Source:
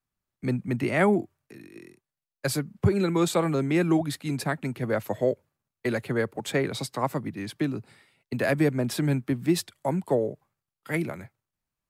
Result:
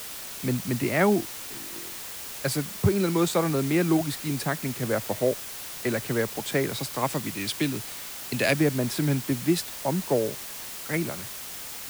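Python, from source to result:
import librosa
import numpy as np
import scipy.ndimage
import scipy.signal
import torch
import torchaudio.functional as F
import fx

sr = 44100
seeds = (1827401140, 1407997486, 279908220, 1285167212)

y = fx.band_shelf(x, sr, hz=5000.0, db=11.5, octaves=2.5, at=(6.98, 8.59))
y = fx.dmg_noise_colour(y, sr, seeds[0], colour='white', level_db=-38.0)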